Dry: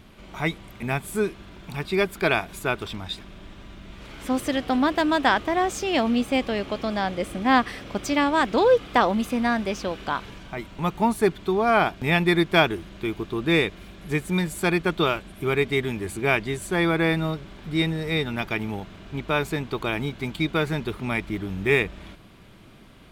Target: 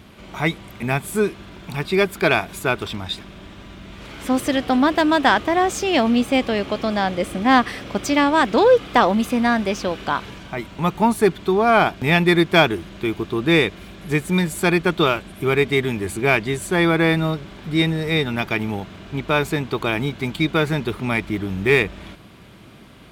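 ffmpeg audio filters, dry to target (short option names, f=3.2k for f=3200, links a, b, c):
-filter_complex "[0:a]highpass=54,asplit=2[a][b];[b]asoftclip=type=tanh:threshold=-14.5dB,volume=-5.5dB[c];[a][c]amix=inputs=2:normalize=0,volume=1.5dB"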